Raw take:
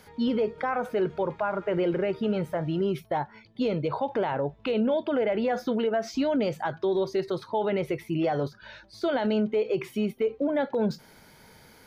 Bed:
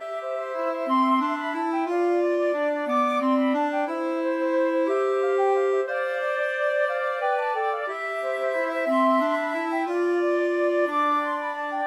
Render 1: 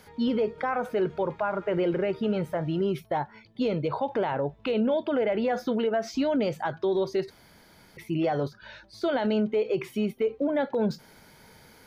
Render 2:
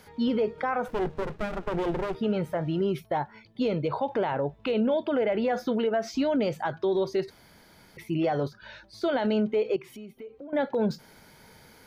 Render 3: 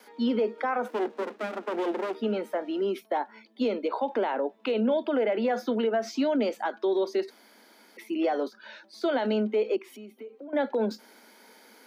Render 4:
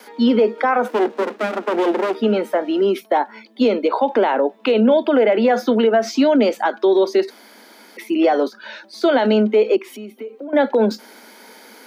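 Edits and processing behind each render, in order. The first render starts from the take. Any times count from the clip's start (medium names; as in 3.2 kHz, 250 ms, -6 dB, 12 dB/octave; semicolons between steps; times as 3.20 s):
7.30–7.97 s: room tone
0.88–2.15 s: sliding maximum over 33 samples; 9.76–10.53 s: compression 3:1, threshold -45 dBFS
gate with hold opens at -50 dBFS; steep high-pass 210 Hz 96 dB/octave
trim +11 dB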